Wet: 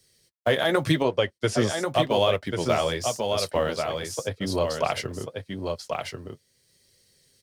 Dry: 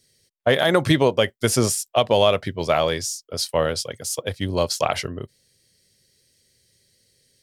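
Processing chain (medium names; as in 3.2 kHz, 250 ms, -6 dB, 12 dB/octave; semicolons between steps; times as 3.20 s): companding laws mixed up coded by A; 1.02–1.83 s: distance through air 79 m; flange 0.86 Hz, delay 1.5 ms, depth 9.7 ms, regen -39%; 3.76–4.84 s: treble shelf 3.7 kHz -10.5 dB; delay 1089 ms -7 dB; three bands compressed up and down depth 40%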